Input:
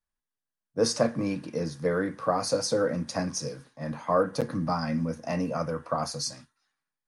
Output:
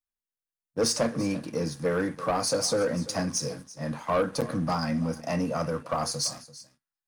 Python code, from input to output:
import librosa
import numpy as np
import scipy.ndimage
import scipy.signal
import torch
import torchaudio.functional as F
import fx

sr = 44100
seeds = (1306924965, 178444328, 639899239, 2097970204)

p1 = fx.high_shelf(x, sr, hz=7600.0, db=8.5)
p2 = fx.leveller(p1, sr, passes=2)
p3 = p2 + fx.echo_single(p2, sr, ms=338, db=-17.5, dry=0)
y = p3 * librosa.db_to_amplitude(-6.0)